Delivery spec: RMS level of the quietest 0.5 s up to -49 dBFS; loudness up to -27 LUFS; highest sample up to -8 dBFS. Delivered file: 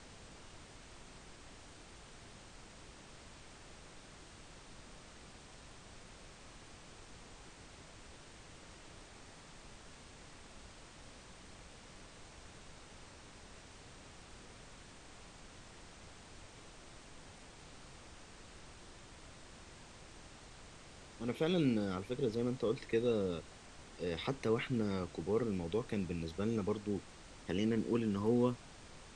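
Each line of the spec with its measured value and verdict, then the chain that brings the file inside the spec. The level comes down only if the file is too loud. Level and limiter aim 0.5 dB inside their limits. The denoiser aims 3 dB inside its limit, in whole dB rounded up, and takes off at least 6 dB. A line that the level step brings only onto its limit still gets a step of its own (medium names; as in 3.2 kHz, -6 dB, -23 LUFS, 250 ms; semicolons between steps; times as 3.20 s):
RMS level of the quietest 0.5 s -55 dBFS: pass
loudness -36.5 LUFS: pass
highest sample -19.5 dBFS: pass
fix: none needed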